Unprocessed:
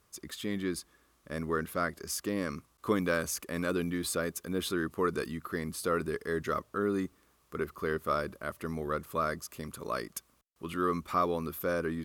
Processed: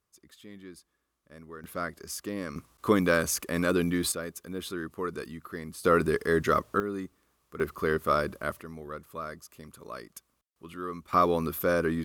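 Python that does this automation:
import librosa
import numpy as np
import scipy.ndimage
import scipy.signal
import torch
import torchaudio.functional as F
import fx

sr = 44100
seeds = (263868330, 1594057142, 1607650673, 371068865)

y = fx.gain(x, sr, db=fx.steps((0.0, -13.0), (1.64, -2.0), (2.56, 5.5), (4.12, -3.5), (5.85, 7.5), (6.8, -3.5), (7.6, 5.0), (8.61, -6.5), (11.13, 5.5)))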